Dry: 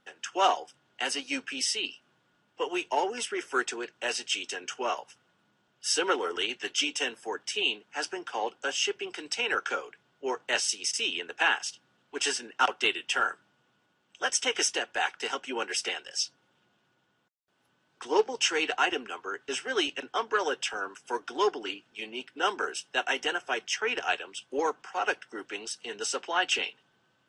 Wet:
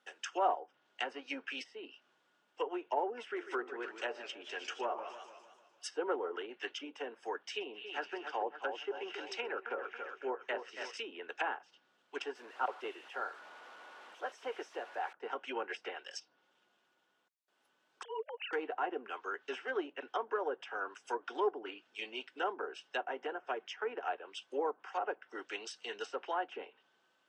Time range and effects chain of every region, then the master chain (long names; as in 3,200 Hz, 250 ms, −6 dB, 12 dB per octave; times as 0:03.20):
0:03.21–0:05.87: hum removal 84.83 Hz, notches 16 + feedback echo with a swinging delay time 150 ms, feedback 53%, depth 149 cents, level −11.5 dB
0:07.38–0:10.97: low-pass filter 3,000 Hz 6 dB per octave + echo with a time of its own for lows and highs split 2,200 Hz, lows 278 ms, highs 128 ms, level −9 dB
0:12.35–0:15.13: spike at every zero crossing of −18 dBFS + low-shelf EQ 260 Hz −8 dB
0:18.03–0:18.53: three sine waves on the formant tracks + downward compressor 2.5 to 1, threshold −38 dBFS
whole clip: treble cut that deepens with the level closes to 850 Hz, closed at −26.5 dBFS; high-pass filter 360 Hz 12 dB per octave; level −3.5 dB